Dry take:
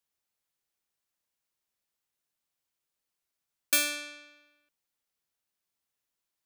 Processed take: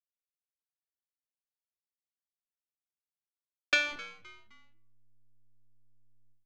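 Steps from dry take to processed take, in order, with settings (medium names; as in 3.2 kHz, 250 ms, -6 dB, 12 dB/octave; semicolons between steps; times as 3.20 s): short-mantissa float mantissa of 2-bit; elliptic band-pass 360–6600 Hz, stop band 40 dB; comb 5.6 ms, depth 71%; hysteresis with a dead band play -24.5 dBFS; distance through air 150 m; frequency-shifting echo 259 ms, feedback 37%, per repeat -110 Hz, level -22.5 dB; reverberation RT60 0.75 s, pre-delay 7 ms, DRR 15.5 dB; endings held to a fixed fall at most 100 dB/s; trim +7.5 dB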